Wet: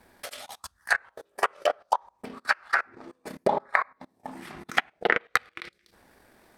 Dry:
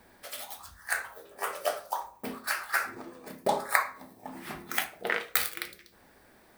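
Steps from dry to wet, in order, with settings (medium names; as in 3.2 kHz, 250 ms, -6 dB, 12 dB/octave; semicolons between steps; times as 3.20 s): low-pass that closes with the level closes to 2.2 kHz, closed at -27.5 dBFS; level held to a coarse grid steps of 16 dB; transient shaper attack +8 dB, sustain -11 dB; trim +5 dB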